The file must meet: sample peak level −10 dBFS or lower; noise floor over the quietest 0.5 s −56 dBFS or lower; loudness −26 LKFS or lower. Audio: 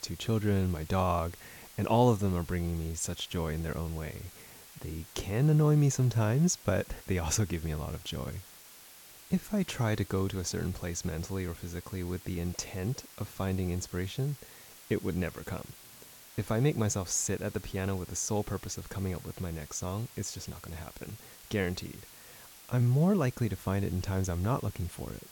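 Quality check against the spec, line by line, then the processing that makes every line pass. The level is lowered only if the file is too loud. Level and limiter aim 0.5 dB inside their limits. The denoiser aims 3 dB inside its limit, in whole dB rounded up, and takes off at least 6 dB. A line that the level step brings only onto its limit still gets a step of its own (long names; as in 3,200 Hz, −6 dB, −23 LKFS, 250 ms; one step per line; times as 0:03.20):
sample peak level −13.5 dBFS: in spec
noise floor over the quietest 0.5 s −53 dBFS: out of spec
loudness −32.0 LKFS: in spec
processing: broadband denoise 6 dB, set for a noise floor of −53 dBFS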